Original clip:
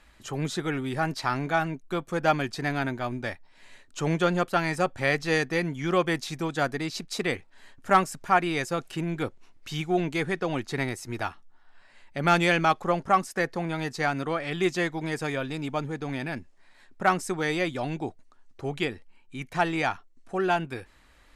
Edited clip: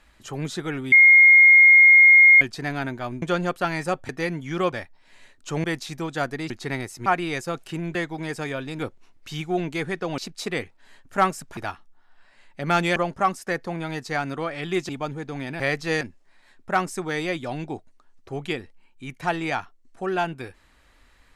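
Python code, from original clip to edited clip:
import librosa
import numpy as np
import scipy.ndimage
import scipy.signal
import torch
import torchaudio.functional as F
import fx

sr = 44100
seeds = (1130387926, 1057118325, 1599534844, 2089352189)

y = fx.edit(x, sr, fx.bleep(start_s=0.92, length_s=1.49, hz=2140.0, db=-8.5),
    fx.move(start_s=3.22, length_s=0.92, to_s=6.05),
    fx.move(start_s=5.01, length_s=0.41, to_s=16.33),
    fx.swap(start_s=6.91, length_s=1.39, other_s=10.58, other_length_s=0.56),
    fx.cut(start_s=12.53, length_s=0.32),
    fx.move(start_s=14.78, length_s=0.84, to_s=9.19), tone=tone)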